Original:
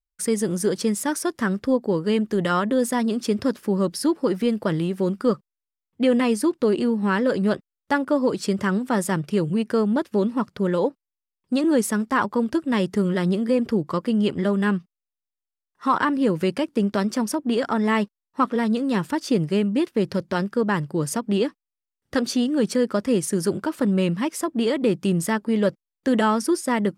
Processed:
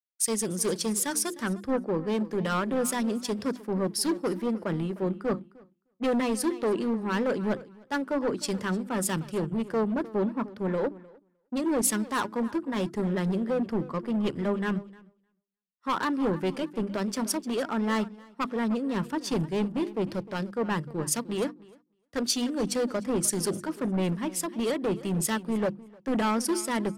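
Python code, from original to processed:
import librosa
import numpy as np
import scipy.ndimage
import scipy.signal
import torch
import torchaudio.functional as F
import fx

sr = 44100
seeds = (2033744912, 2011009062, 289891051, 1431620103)

p1 = fx.hum_notches(x, sr, base_hz=50, count=7)
p2 = np.clip(10.0 ** (19.5 / 20.0) * p1, -1.0, 1.0) / 10.0 ** (19.5 / 20.0)
p3 = p2 + fx.echo_feedback(p2, sr, ms=306, feedback_pct=30, wet_db=-15, dry=0)
p4 = fx.band_widen(p3, sr, depth_pct=100)
y = F.gain(torch.from_numpy(p4), -4.0).numpy()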